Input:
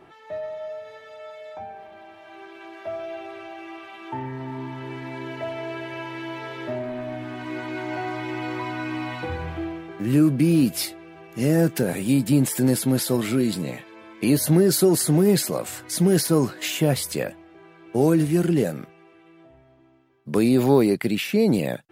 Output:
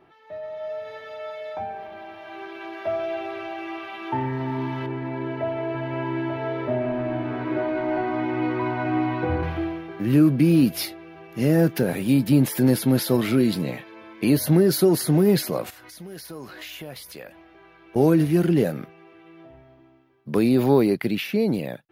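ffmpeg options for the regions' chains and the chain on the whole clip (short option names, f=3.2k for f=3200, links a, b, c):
-filter_complex "[0:a]asettb=1/sr,asplit=3[a][b][c];[a]atrim=end=4.864[d];[b]atrim=start=4.86:end=9.43,asetpts=PTS-STARTPTS,afade=t=in:d=0.004:c=qsin,afade=t=out:st=4.566:d=0.004:c=qsin,lowpass=f=1k:p=1,aecho=1:1:888:0.596,atrim=end_sample=201537[e];[c]atrim=start=9.426[f];[d][e]acrossfade=d=0.004:c1=hsin:c2=qsin[g];[g][f]acrossfade=d=0.004:c1=qsin:c2=hsin,asettb=1/sr,asplit=3[h][i][j];[h]atrim=end=15.704[k];[i]atrim=start=15.7:end=17.96,asetpts=PTS-STARTPTS,afade=t=in:d=0.004:c=qsin,afade=t=out:st=2.256:d=0.004:c=qsin,lowshelf=f=400:g=-10.5,acompressor=threshold=-42dB:ratio=4:attack=3.2:release=140:knee=1:detection=peak,aeval=exprs='val(0)+0.000355*(sin(2*PI*60*n/s)+sin(2*PI*2*60*n/s)/2+sin(2*PI*3*60*n/s)/3+sin(2*PI*4*60*n/s)/4+sin(2*PI*5*60*n/s)/5)':c=same[l];[j]atrim=start=17.956[m];[k][l]acrossfade=d=0.004:c1=hsin:c2=qsin[n];[n][m]acrossfade=d=0.004:c1=qsin:c2=hsin,equalizer=f=7.9k:t=o:w=0.48:g=-15,dynaudnorm=f=100:g=13:m=11.5dB,volume=-6dB"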